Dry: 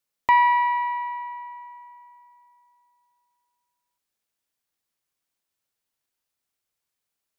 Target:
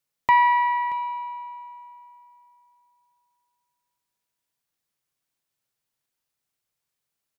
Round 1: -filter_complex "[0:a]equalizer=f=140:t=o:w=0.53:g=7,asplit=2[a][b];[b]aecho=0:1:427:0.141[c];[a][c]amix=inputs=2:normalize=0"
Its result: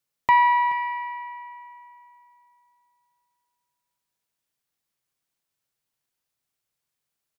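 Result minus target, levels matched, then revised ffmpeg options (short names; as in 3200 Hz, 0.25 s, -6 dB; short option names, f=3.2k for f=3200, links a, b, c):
echo 0.202 s early
-filter_complex "[0:a]equalizer=f=140:t=o:w=0.53:g=7,asplit=2[a][b];[b]aecho=0:1:629:0.141[c];[a][c]amix=inputs=2:normalize=0"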